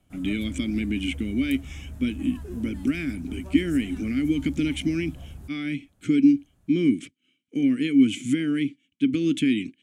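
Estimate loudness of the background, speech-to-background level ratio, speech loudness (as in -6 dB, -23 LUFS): -41.0 LUFS, 16.0 dB, -25.0 LUFS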